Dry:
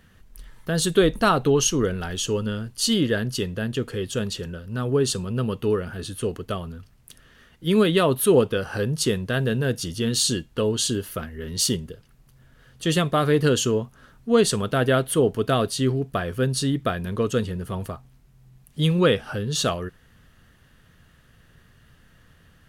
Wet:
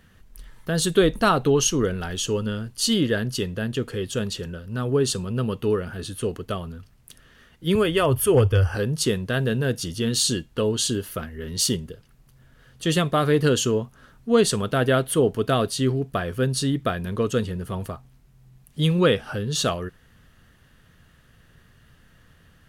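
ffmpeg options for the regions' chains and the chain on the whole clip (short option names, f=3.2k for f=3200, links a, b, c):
-filter_complex "[0:a]asettb=1/sr,asplit=3[a][b][c];[a]atrim=end=7.754[d];[b]atrim=start=7.75:end=8.75,asetpts=PTS-STARTPTS,afade=t=in:d=0.004:c=qsin,afade=t=out:st=0.996:d=0.004:c=qsin,lowshelf=f=130:t=q:w=3:g=11.5,asoftclip=type=hard:threshold=-10dB,asuperstop=centerf=3900:order=4:qfactor=4.4[e];[c]atrim=start=8.746[f];[d][e]acrossfade=d=0.004:c1=hsin:c2=qsin[g];[g][f]acrossfade=d=0.004:c1=qsin:c2=hsin"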